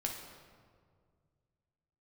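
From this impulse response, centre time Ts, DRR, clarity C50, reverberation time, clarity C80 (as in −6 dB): 51 ms, 0.0 dB, 4.0 dB, 2.0 s, 6.0 dB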